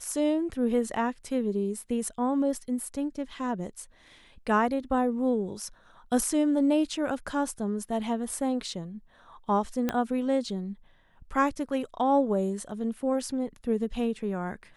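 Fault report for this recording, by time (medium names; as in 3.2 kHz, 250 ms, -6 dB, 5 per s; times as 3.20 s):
9.89 s: pop -13 dBFS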